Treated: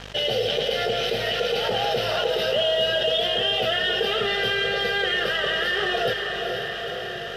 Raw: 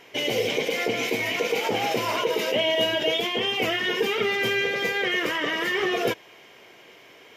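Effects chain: treble shelf 4.8 kHz +8.5 dB; static phaser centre 1.5 kHz, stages 8; hum 50 Hz, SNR 25 dB; in parallel at -7.5 dB: companded quantiser 4-bit; on the sum: crossover distortion -46.5 dBFS; distance through air 73 m; echo that smears into a reverb 460 ms, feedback 54%, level -8.5 dB; level flattener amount 50%; trim -2 dB

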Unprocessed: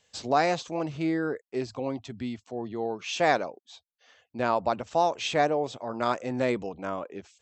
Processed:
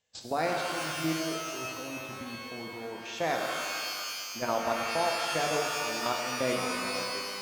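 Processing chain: level held to a coarse grid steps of 13 dB; pitch-shifted reverb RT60 2.2 s, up +12 st, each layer -2 dB, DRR 1.5 dB; trim -3.5 dB

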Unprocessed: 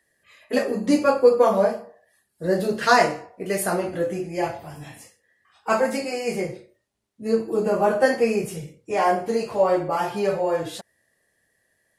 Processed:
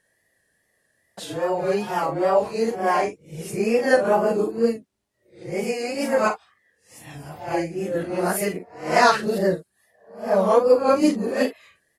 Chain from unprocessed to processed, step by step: reverse the whole clip; early reflections 40 ms -9 dB, 51 ms -15 dB; wow and flutter 64 cents

